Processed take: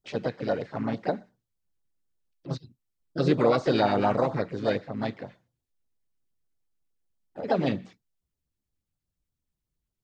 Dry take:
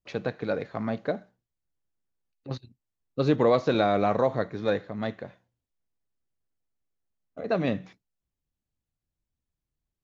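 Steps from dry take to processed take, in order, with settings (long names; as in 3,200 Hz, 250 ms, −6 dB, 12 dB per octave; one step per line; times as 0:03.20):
pitch-shifted copies added +3 semitones −8 dB, +4 semitones −7 dB
auto-filter notch sine 8.4 Hz 590–2,600 Hz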